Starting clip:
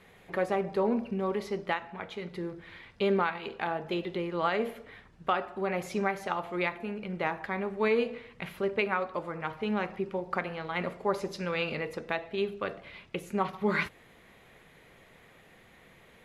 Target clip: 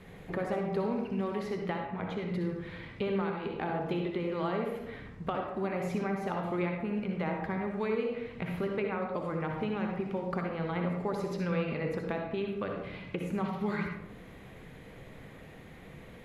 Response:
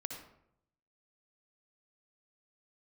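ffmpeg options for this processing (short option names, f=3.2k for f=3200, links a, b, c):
-filter_complex "[0:a]lowshelf=f=430:g=11,acrossover=split=910|2200[a][b][c];[a]acompressor=threshold=-34dB:ratio=4[d];[b]acompressor=threshold=-43dB:ratio=4[e];[c]acompressor=threshold=-53dB:ratio=4[f];[d][e][f]amix=inputs=3:normalize=0[g];[1:a]atrim=start_sample=2205[h];[g][h]afir=irnorm=-1:irlink=0,volume=3dB"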